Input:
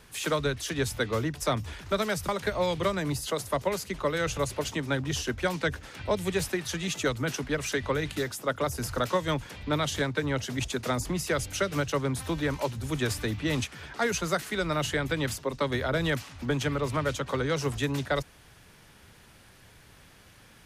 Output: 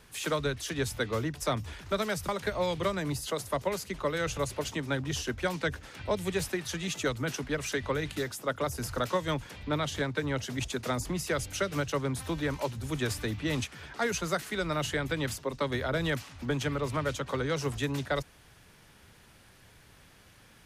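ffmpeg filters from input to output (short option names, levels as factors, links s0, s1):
-filter_complex "[0:a]asettb=1/sr,asplit=3[s0][s1][s2];[s0]atrim=end=9.674[s3];[s1]atrim=start=9.67:end=10.09,asetpts=PTS-STARTPTS,afade=t=in:d=0.004:c=qsin,afade=t=out:st=0.416:d=0.004:c=qsin,highshelf=f=4800:g=-5[s4];[s2]atrim=start=10.086[s5];[s3][s4]acrossfade=d=0.004:c1=hsin:c2=qsin[s6];[s6][s5]acrossfade=d=0.004:c1=qsin:c2=hsin,volume=0.75"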